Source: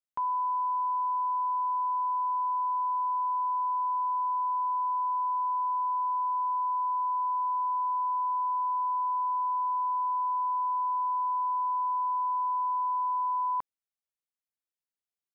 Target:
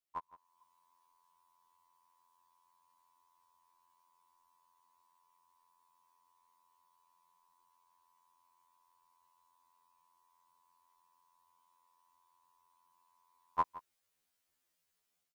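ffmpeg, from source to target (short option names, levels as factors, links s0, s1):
-af "dynaudnorm=f=310:g=3:m=3.98,aecho=1:1:165:0.133,afftfilt=real='re*2*eq(mod(b,4),0)':imag='im*2*eq(mod(b,4),0)':win_size=2048:overlap=0.75,volume=1.26"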